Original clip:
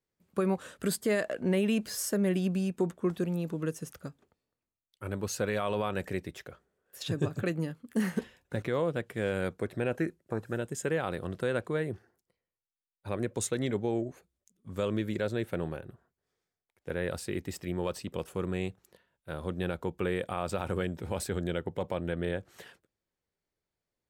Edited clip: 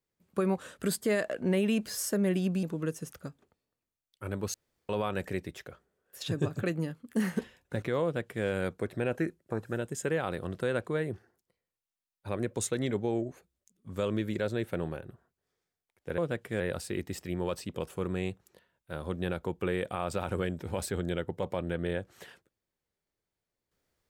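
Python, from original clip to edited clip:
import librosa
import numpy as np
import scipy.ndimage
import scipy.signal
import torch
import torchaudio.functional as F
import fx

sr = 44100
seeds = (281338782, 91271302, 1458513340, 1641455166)

y = fx.edit(x, sr, fx.cut(start_s=2.63, length_s=0.8),
    fx.room_tone_fill(start_s=5.34, length_s=0.35),
    fx.duplicate(start_s=8.83, length_s=0.42, to_s=16.98), tone=tone)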